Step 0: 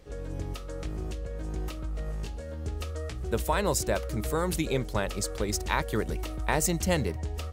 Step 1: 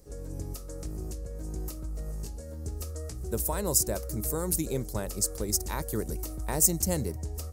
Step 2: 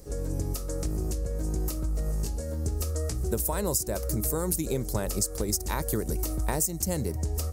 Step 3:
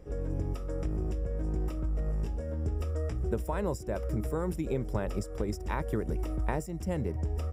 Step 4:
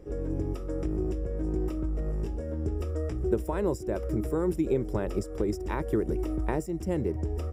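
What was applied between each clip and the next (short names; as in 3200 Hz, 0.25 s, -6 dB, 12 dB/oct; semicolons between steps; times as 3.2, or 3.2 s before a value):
EQ curve 340 Hz 0 dB, 3300 Hz -12 dB, 5000 Hz +3 dB, 12000 Hz +13 dB; gain -2 dB
compressor 10:1, threshold -32 dBFS, peak gain reduction 16 dB; gain +8 dB
polynomial smoothing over 25 samples; gain -2 dB
bell 350 Hz +9.5 dB 0.62 oct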